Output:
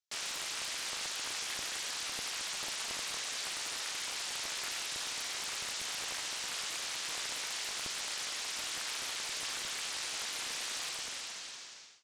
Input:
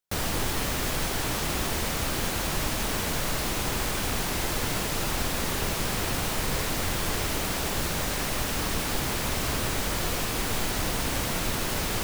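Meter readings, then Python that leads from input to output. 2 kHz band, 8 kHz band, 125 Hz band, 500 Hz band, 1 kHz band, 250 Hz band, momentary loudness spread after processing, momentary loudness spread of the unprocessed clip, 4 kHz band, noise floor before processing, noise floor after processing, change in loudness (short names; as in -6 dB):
-8.0 dB, -5.5 dB, -32.0 dB, -19.0 dB, -13.5 dB, -25.5 dB, 0 LU, 0 LU, -4.0 dB, -30 dBFS, -47 dBFS, -8.5 dB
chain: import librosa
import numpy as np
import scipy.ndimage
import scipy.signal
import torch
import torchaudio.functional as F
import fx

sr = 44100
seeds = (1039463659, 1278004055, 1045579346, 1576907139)

y = fx.fade_out_tail(x, sr, length_s=1.23)
y = scipy.signal.sosfilt(scipy.signal.butter(6, 6700.0, 'lowpass', fs=sr, output='sos'), y)
y = np.diff(y, prepend=0.0)
y = fx.quant_float(y, sr, bits=4)
y = fx.doppler_dist(y, sr, depth_ms=0.96)
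y = y * 10.0 ** (2.0 / 20.0)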